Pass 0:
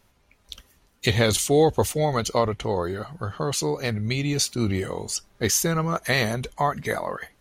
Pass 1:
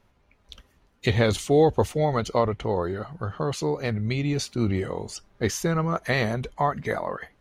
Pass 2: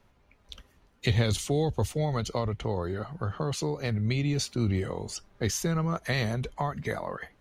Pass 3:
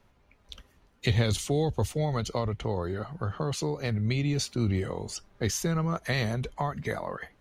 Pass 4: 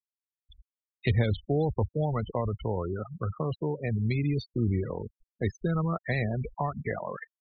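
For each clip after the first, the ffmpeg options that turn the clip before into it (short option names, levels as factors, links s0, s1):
-af "lowpass=f=2100:p=1"
-filter_complex "[0:a]acrossover=split=180|3000[s0][s1][s2];[s1]acompressor=threshold=0.0251:ratio=2.5[s3];[s0][s3][s2]amix=inputs=3:normalize=0"
-af anull
-filter_complex "[0:a]acrossover=split=3900[s0][s1];[s1]acompressor=threshold=0.00316:ratio=4:attack=1:release=60[s2];[s0][s2]amix=inputs=2:normalize=0,afftfilt=real='re*gte(hypot(re,im),0.0355)':imag='im*gte(hypot(re,im),0.0355)':win_size=1024:overlap=0.75"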